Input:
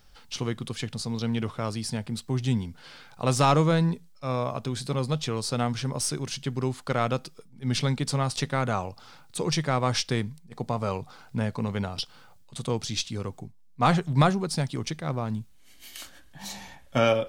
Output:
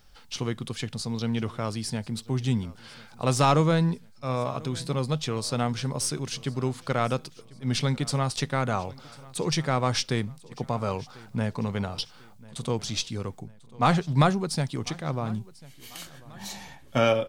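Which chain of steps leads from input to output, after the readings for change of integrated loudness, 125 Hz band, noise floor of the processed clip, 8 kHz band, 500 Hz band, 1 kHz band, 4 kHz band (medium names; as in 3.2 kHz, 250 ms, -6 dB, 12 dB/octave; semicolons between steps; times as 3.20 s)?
0.0 dB, 0.0 dB, -51 dBFS, 0.0 dB, 0.0 dB, 0.0 dB, 0.0 dB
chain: feedback delay 1044 ms, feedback 44%, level -22 dB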